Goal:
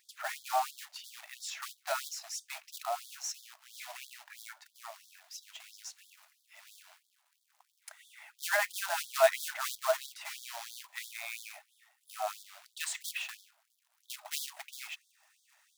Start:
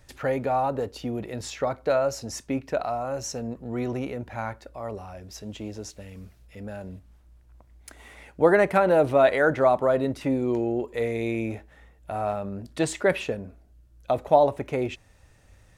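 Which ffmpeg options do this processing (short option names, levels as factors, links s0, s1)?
-filter_complex "[0:a]asettb=1/sr,asplit=3[s0][s1][s2];[s0]atrim=end=11.514[s3];[s1]atrim=start=11.51:end=12.41,asetpts=PTS-STARTPTS,afade=t=in:d=0.004:c=qsin,afade=t=out:st=0.896:d=0.004:c=qsin,equalizer=f=250:t=o:w=0.33:g=5,equalizer=f=1000:t=o:w=0.33:g=-3,equalizer=f=1600:t=o:w=0.33:g=-5,equalizer=f=10000:t=o:w=0.33:g=9[s4];[s2]atrim=start=12.406[s5];[s3][s4]acrossfade=d=0.004:c1=hsin:c2=qsin[s6];[s6][s5]acrossfade=d=0.004:c1=qsin:c2=hsin,acrusher=bits=3:mode=log:mix=0:aa=0.000001,afftfilt=real='re*gte(b*sr/1024,590*pow(3300/590,0.5+0.5*sin(2*PI*3*pts/sr)))':imag='im*gte(b*sr/1024,590*pow(3300/590,0.5+0.5*sin(2*PI*3*pts/sr)))':win_size=1024:overlap=0.75,volume=0.668"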